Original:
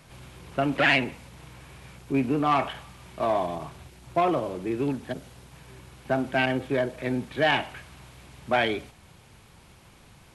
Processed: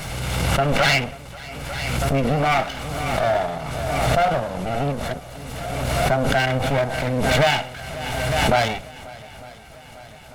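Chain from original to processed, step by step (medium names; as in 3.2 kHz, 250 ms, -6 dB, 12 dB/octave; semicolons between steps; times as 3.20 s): comb filter that takes the minimum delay 1.4 ms; shuffle delay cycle 899 ms, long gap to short 1.5:1, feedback 63%, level -21 dB; swell ahead of each attack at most 25 dB/s; trim +5.5 dB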